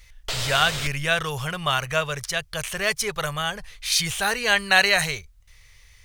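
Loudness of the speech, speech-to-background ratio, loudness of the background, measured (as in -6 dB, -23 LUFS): -23.0 LUFS, 6.0 dB, -29.0 LUFS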